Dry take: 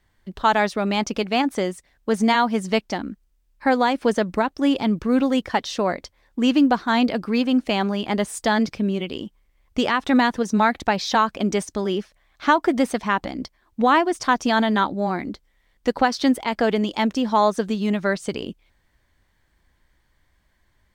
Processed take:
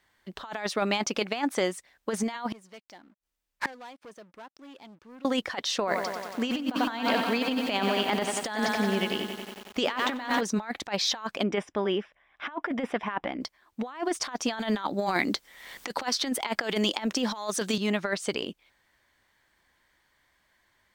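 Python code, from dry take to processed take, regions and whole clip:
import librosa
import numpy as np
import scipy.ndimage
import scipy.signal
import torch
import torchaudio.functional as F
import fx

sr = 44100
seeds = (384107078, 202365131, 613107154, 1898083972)

y = fx.chain(x, sr, fx.leveller(passes=3),
    fx.gate_flip(shuts_db=-15.0, range_db=-32), at=(2.52, 5.25))
y = fx.chain(y, sr, fx.lowpass(hz=8400.0, slope=12),
    fx.echo_crushed(ms=92, feedback_pct=80, bits=7, wet_db=-9), at=(5.78, 10.41))
y = fx.chain(y, sr, fx.savgol(points=25),
    fx.notch(hz=1300.0, q=16.0), at=(11.43, 13.41))
y = fx.chain(y, sr, fx.high_shelf(hz=3600.0, db=6.5),
    fx.band_squash(depth_pct=100), at=(14.59, 17.78))
y = fx.lowpass(y, sr, hz=1200.0, slope=6)
y = fx.tilt_eq(y, sr, slope=4.5)
y = fx.over_compress(y, sr, threshold_db=-27.0, ratio=-0.5)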